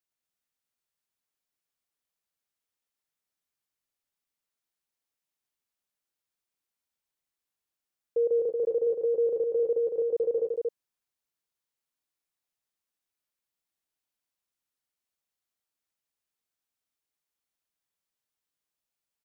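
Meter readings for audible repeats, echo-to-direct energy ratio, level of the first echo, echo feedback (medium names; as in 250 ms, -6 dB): 2, -3.0 dB, -13.5 dB, no regular repeats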